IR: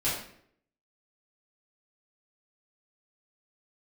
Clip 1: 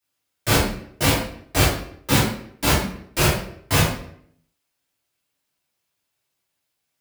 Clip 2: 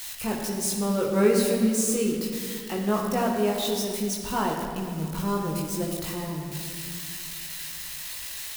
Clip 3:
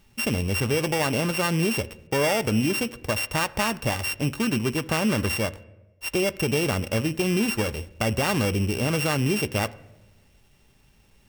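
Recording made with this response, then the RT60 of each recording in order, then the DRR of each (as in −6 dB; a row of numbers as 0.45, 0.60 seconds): 1; 0.65, 2.1, 1.1 seconds; −11.0, −2.5, 15.0 decibels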